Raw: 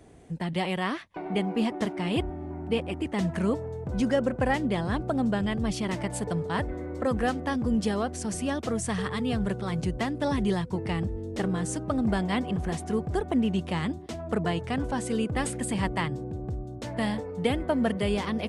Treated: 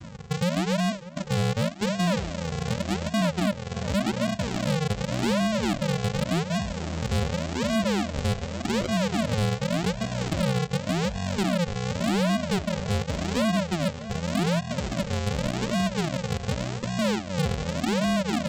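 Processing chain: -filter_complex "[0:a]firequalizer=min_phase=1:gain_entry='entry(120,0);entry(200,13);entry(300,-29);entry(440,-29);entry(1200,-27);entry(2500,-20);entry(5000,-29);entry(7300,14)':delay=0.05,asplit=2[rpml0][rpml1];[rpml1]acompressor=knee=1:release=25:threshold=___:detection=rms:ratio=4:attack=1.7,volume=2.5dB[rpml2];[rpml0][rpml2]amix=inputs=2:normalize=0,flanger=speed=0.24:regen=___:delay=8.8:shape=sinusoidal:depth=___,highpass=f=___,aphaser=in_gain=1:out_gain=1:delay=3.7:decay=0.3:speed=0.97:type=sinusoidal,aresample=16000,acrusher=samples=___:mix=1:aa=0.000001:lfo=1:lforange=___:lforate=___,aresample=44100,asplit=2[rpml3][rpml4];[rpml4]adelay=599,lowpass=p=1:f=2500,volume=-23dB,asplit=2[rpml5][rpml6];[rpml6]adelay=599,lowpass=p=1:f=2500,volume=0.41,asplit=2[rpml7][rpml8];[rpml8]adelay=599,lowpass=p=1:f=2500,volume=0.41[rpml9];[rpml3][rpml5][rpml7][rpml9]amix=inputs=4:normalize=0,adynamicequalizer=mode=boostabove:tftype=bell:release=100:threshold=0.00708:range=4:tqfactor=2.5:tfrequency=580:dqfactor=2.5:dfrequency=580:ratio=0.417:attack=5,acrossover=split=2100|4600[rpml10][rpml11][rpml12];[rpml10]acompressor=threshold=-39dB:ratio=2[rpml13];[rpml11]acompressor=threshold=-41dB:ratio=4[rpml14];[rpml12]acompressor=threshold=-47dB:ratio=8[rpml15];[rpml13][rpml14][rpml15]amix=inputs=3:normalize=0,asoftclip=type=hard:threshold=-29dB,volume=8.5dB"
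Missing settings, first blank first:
-29dB, -66, 9, 76, 35, 35, 0.87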